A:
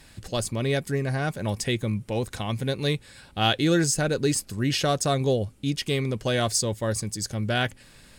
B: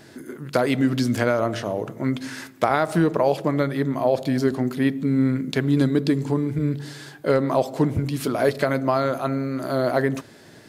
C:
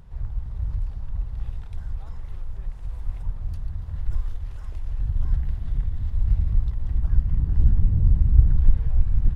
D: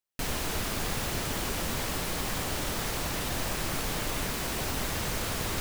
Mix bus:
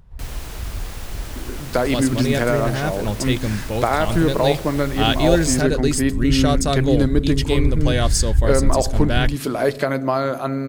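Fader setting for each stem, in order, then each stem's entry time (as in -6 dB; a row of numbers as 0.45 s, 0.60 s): +3.0 dB, +1.0 dB, -2.0 dB, -4.5 dB; 1.60 s, 1.20 s, 0.00 s, 0.00 s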